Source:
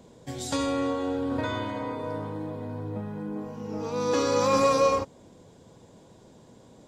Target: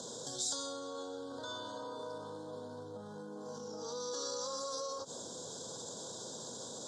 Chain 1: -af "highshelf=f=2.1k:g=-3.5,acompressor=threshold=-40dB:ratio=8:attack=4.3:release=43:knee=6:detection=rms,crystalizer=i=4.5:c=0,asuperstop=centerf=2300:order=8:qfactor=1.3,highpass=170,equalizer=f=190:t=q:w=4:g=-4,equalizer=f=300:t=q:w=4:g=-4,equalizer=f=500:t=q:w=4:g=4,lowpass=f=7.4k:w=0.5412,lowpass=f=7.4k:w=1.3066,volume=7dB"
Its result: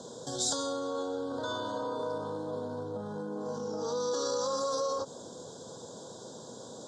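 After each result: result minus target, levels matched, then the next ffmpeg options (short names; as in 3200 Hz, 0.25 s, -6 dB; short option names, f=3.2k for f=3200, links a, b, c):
compressor: peak gain reduction -10 dB; 4000 Hz band -4.5 dB
-af "highshelf=f=2.1k:g=-3.5,acompressor=threshold=-50.5dB:ratio=8:attack=4.3:release=43:knee=6:detection=rms,crystalizer=i=4.5:c=0,asuperstop=centerf=2300:order=8:qfactor=1.3,highpass=170,equalizer=f=190:t=q:w=4:g=-4,equalizer=f=300:t=q:w=4:g=-4,equalizer=f=500:t=q:w=4:g=4,lowpass=f=7.4k:w=0.5412,lowpass=f=7.4k:w=1.3066,volume=7dB"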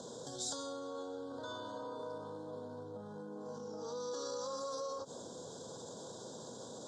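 4000 Hz band -3.5 dB
-af "highshelf=f=2.1k:g=5.5,acompressor=threshold=-50.5dB:ratio=8:attack=4.3:release=43:knee=6:detection=rms,crystalizer=i=4.5:c=0,asuperstop=centerf=2300:order=8:qfactor=1.3,highpass=170,equalizer=f=190:t=q:w=4:g=-4,equalizer=f=300:t=q:w=4:g=-4,equalizer=f=500:t=q:w=4:g=4,lowpass=f=7.4k:w=0.5412,lowpass=f=7.4k:w=1.3066,volume=7dB"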